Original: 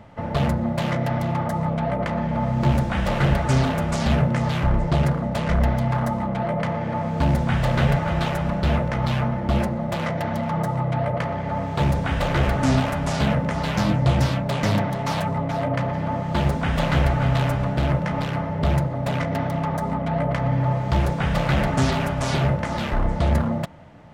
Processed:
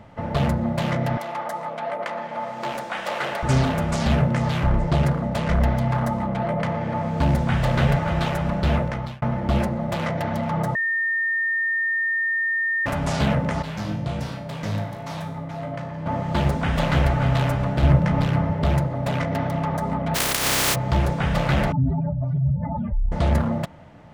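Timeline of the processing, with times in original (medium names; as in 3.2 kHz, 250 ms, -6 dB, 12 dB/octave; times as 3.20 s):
1.17–3.43 s: high-pass 530 Hz
8.82–9.22 s: fade out
10.75–12.86 s: bleep 1.82 kHz -20 dBFS
13.62–16.06 s: feedback comb 53 Hz, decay 0.63 s, mix 80%
17.83–18.53 s: bass shelf 210 Hz +8.5 dB
20.14–20.74 s: spectral contrast reduction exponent 0.15
21.72–23.12 s: spectral contrast enhancement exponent 3.2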